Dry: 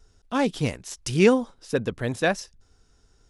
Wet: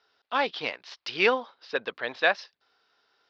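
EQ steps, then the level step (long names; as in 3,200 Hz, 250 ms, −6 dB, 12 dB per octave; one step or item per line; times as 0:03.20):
high-pass filter 770 Hz 12 dB per octave
Butterworth low-pass 4,700 Hz 48 dB per octave
+3.5 dB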